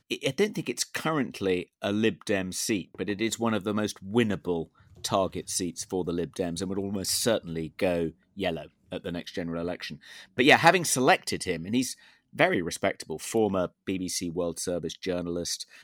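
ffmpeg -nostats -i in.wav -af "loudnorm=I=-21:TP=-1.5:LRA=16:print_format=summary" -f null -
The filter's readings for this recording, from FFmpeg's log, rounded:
Input Integrated:    -28.3 LUFS
Input True Peak:      -5.7 dBTP
Input LRA:             5.8 LU
Input Threshold:     -38.5 LUFS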